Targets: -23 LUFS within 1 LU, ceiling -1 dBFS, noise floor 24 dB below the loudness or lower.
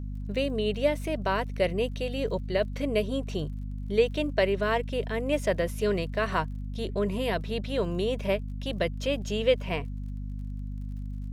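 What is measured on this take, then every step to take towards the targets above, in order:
tick rate 33 per s; hum 50 Hz; highest harmonic 250 Hz; hum level -32 dBFS; loudness -29.5 LUFS; peak level -11.0 dBFS; loudness target -23.0 LUFS
-> de-click; de-hum 50 Hz, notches 5; trim +6.5 dB

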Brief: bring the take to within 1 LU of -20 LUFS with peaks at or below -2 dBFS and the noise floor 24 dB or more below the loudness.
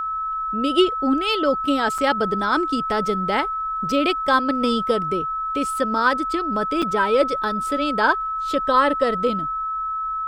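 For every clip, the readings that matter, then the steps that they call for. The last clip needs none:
dropouts 2; longest dropout 4.9 ms; steady tone 1.3 kHz; tone level -23 dBFS; loudness -21.0 LUFS; peak level -4.5 dBFS; loudness target -20.0 LUFS
-> interpolate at 1.98/6.82 s, 4.9 ms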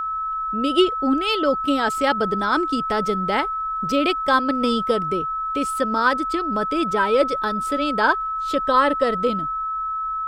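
dropouts 0; steady tone 1.3 kHz; tone level -23 dBFS
-> band-stop 1.3 kHz, Q 30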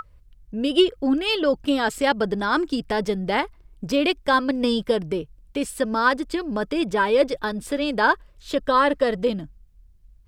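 steady tone not found; loudness -22.5 LUFS; peak level -5.5 dBFS; loudness target -20.0 LUFS
-> trim +2.5 dB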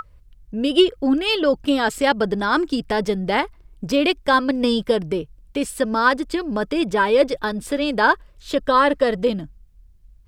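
loudness -20.0 LUFS; peak level -3.0 dBFS; noise floor -51 dBFS

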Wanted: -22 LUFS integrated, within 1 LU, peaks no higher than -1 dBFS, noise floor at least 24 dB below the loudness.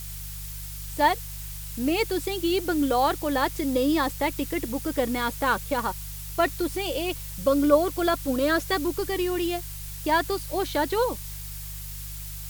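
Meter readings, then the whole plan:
hum 50 Hz; highest harmonic 150 Hz; hum level -36 dBFS; noise floor -37 dBFS; noise floor target -51 dBFS; loudness -26.5 LUFS; peak level -6.0 dBFS; loudness target -22.0 LUFS
-> de-hum 50 Hz, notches 3; noise print and reduce 14 dB; trim +4.5 dB

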